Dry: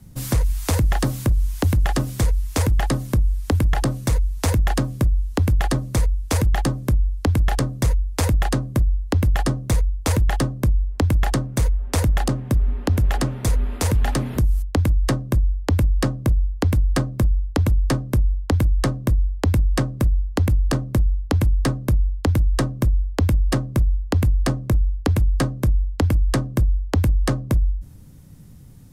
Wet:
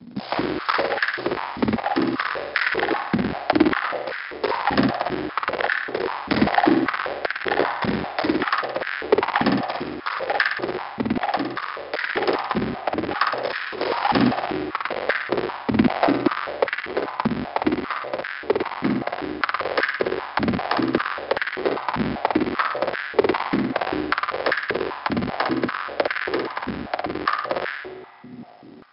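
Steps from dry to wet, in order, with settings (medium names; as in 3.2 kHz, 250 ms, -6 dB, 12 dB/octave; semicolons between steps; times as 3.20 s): cycle switcher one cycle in 2, muted; dynamic bell 1.8 kHz, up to +6 dB, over -43 dBFS, Q 0.8; in parallel at -2 dB: peak limiter -21 dBFS, peak gain reduction 13 dB; 16.55–17.39 s: on the sum: compression, threshold -18 dBFS, peak gain reduction 6 dB; random-step tremolo; 13.43–14.30 s: companded quantiser 4-bit; brick-wall FIR low-pass 5.3 kHz; flutter echo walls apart 9.6 m, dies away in 0.84 s; spring tank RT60 3 s, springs 32/57 ms, chirp 35 ms, DRR 13 dB; step-sequenced high-pass 5.1 Hz 230–1600 Hz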